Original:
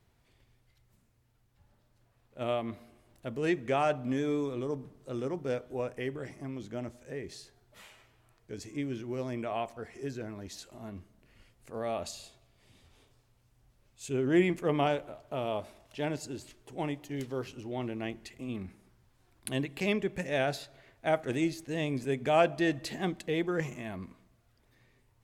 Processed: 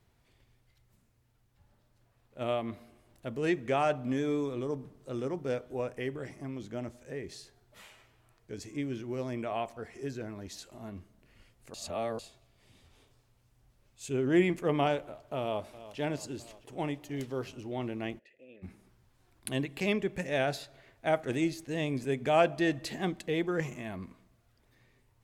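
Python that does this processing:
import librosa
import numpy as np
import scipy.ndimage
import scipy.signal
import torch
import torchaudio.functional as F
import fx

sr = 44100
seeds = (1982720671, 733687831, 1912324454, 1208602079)

y = fx.echo_throw(x, sr, start_s=15.4, length_s=0.59, ms=330, feedback_pct=70, wet_db=-15.0)
y = fx.vowel_filter(y, sr, vowel='e', at=(18.18, 18.62), fade=0.02)
y = fx.edit(y, sr, fx.reverse_span(start_s=11.74, length_s=0.45), tone=tone)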